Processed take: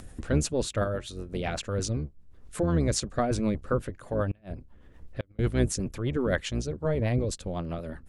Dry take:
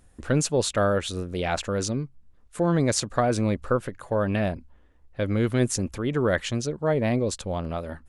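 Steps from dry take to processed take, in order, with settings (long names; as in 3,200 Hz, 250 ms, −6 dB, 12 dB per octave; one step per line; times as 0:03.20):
sub-octave generator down 1 octave, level −2 dB
upward compression, threshold −27 dBFS
rotating-speaker cabinet horn 8 Hz
0:00.84–0:01.34: tuned comb filter 120 Hz, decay 0.19 s, harmonics odd, mix 50%
0:04.26–0:05.39: gate with flip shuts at −17 dBFS, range −34 dB
level −2.5 dB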